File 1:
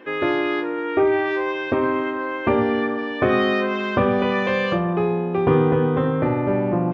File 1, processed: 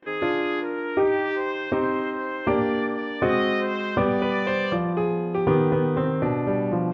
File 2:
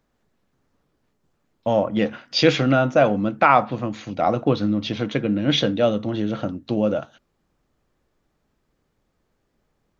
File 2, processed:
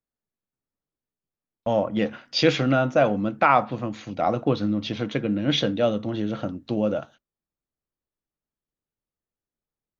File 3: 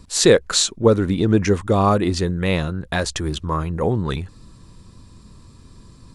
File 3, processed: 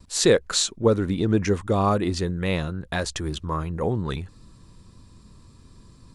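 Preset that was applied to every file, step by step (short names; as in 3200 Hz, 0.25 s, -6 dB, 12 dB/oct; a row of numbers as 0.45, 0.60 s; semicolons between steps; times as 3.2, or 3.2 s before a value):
gate with hold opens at -38 dBFS; match loudness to -24 LUFS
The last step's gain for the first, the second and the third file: -3.0, -3.0, -4.5 dB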